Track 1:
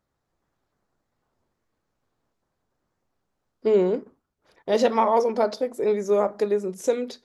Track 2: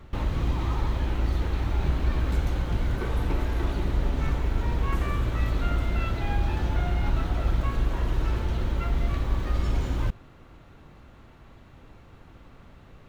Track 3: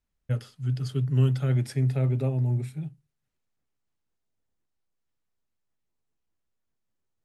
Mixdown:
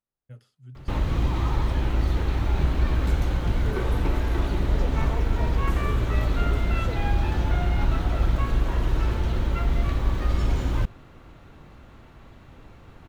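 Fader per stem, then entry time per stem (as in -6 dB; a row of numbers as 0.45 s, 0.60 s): -18.0 dB, +2.5 dB, -17.0 dB; 0.00 s, 0.75 s, 0.00 s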